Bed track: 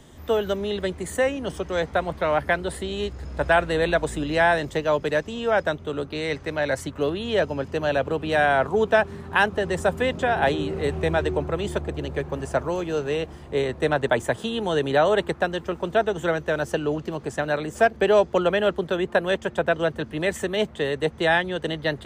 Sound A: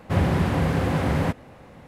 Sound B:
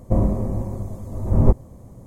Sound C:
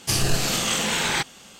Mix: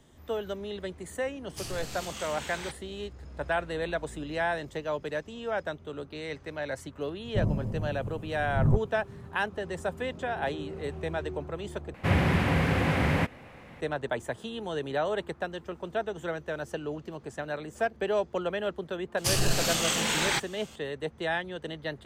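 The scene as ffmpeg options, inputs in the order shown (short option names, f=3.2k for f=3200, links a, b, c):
-filter_complex "[3:a]asplit=2[a][b];[0:a]volume=-10dB[c];[2:a]equalizer=f=140:t=o:w=0.77:g=13.5[d];[1:a]equalizer=f=2.3k:w=1.2:g=8.5[e];[c]asplit=2[f][g];[f]atrim=end=11.944[h];[e]atrim=end=1.87,asetpts=PTS-STARTPTS,volume=-3.5dB[i];[g]atrim=start=13.806[j];[a]atrim=end=1.59,asetpts=PTS-STARTPTS,volume=-17dB,afade=t=in:d=0.004:c=hsin,afade=t=out:st=1.586:d=0.004:c=hsin,adelay=1490[k];[d]atrim=end=2.06,asetpts=PTS-STARTPTS,volume=-14dB,afade=t=in:d=0.004:c=hsin,afade=t=out:st=2.056:d=0.004:c=hsin,adelay=7250[l];[b]atrim=end=1.59,asetpts=PTS-STARTPTS,volume=-4dB,afade=t=in:d=0.004:c=hsin,afade=t=out:st=1.586:d=0.004:c=hsin,adelay=19170[m];[h][i]acrossfade=d=0.004:c1=hsin:c2=hsin[n];[n][j]acrossfade=d=0.004:c1=hsin:c2=hsin[o];[o][k][l][m]amix=inputs=4:normalize=0"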